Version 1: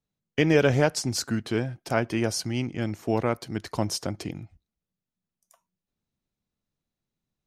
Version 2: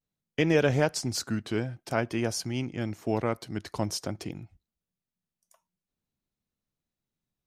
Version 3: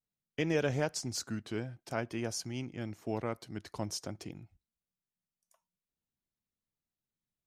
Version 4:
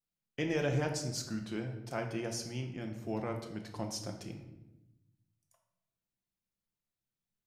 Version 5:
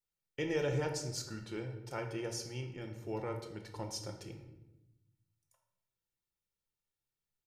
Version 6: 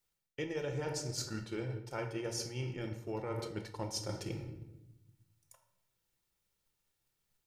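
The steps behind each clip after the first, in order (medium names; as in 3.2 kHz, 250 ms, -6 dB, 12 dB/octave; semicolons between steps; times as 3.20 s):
vibrato 0.51 Hz 43 cents; trim -3 dB
dynamic bell 6.5 kHz, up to +4 dB, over -49 dBFS, Q 2.1; trim -7.5 dB
simulated room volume 370 m³, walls mixed, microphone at 0.82 m; trim -2.5 dB
comb 2.2 ms, depth 57%; trim -3 dB
transient shaper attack +6 dB, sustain 0 dB; reverse; compression 6:1, threshold -45 dBFS, peak gain reduction 17.5 dB; reverse; trim +9 dB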